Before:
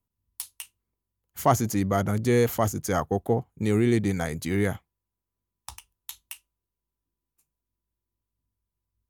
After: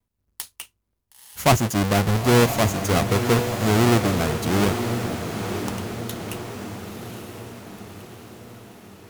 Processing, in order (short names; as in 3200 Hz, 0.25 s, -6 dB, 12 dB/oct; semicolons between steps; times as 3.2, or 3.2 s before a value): half-waves squared off; diffused feedback echo 0.972 s, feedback 56%, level -7 dB; vibrato 0.63 Hz 20 cents